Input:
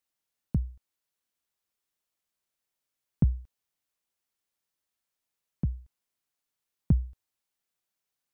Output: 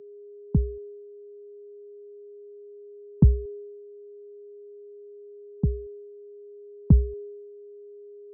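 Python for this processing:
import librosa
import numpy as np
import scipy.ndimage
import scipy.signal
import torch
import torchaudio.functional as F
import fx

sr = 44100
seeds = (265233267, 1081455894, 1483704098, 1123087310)

y = fx.brickwall_lowpass(x, sr, high_hz=1000.0)
y = y + 10.0 ** (-41.0 / 20.0) * np.sin(2.0 * np.pi * 410.0 * np.arange(len(y)) / sr)
y = fx.band_widen(y, sr, depth_pct=70)
y = y * librosa.db_to_amplitude(1.5)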